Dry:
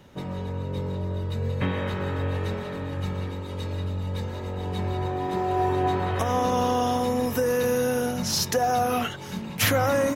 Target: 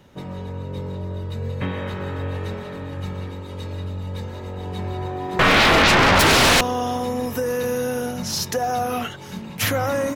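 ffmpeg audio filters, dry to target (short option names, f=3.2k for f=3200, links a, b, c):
-filter_complex "[0:a]asettb=1/sr,asplit=3[a][b][c];[a]atrim=end=5.394[d];[b]atrim=start=5.39:end=6.61,asetpts=PTS-STARTPTS,afade=t=in:d=0.004:c=qsin,afade=t=out:st=1.216:d=0.004:c=qsin,aeval=exprs='0.266*sin(PI/2*7.94*val(0)/0.266)':c=same[e];[c]atrim=start=6.606[f];[d][e]acrossfade=d=0.004:c1=hsin:c2=qsin[g];[g][f]acrossfade=d=0.004:c1=qsin:c2=hsin"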